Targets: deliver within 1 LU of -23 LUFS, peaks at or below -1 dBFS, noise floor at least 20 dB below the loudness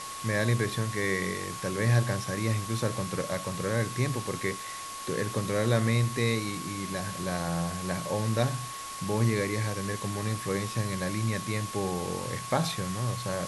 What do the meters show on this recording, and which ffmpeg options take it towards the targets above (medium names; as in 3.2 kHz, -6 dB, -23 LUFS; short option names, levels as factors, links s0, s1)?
steady tone 1.1 kHz; tone level -39 dBFS; noise floor -39 dBFS; noise floor target -50 dBFS; loudness -30.0 LUFS; peak level -10.5 dBFS; loudness target -23.0 LUFS
-> -af "bandreject=f=1100:w=30"
-af "afftdn=nr=11:nf=-39"
-af "volume=2.24"